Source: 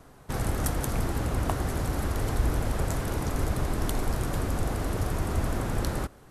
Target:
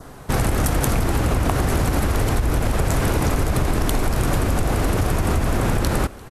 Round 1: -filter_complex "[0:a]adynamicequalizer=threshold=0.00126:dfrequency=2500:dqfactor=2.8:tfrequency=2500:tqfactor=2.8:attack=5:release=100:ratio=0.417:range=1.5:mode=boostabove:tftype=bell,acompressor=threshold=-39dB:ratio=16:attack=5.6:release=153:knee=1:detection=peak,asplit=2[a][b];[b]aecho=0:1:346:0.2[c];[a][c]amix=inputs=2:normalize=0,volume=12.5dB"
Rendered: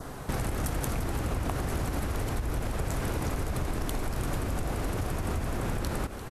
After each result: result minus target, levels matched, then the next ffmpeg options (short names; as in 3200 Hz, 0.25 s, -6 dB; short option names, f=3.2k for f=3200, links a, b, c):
compressor: peak gain reduction +11 dB; echo-to-direct +11 dB
-filter_complex "[0:a]adynamicequalizer=threshold=0.00126:dfrequency=2500:dqfactor=2.8:tfrequency=2500:tqfactor=2.8:attack=5:release=100:ratio=0.417:range=1.5:mode=boostabove:tftype=bell,acompressor=threshold=-27dB:ratio=16:attack=5.6:release=153:knee=1:detection=peak,asplit=2[a][b];[b]aecho=0:1:346:0.2[c];[a][c]amix=inputs=2:normalize=0,volume=12.5dB"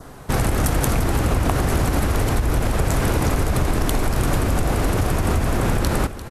echo-to-direct +11 dB
-filter_complex "[0:a]adynamicequalizer=threshold=0.00126:dfrequency=2500:dqfactor=2.8:tfrequency=2500:tqfactor=2.8:attack=5:release=100:ratio=0.417:range=1.5:mode=boostabove:tftype=bell,acompressor=threshold=-27dB:ratio=16:attack=5.6:release=153:knee=1:detection=peak,asplit=2[a][b];[b]aecho=0:1:346:0.0562[c];[a][c]amix=inputs=2:normalize=0,volume=12.5dB"